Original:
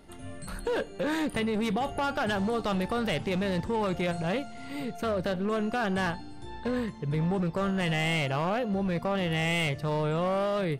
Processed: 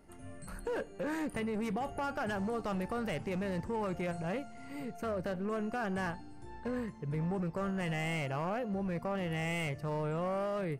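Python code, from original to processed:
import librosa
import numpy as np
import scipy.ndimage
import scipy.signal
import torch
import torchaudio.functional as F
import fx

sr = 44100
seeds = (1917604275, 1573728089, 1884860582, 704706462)

y = fx.peak_eq(x, sr, hz=3600.0, db=-12.5, octaves=0.49)
y = y * 10.0 ** (-6.5 / 20.0)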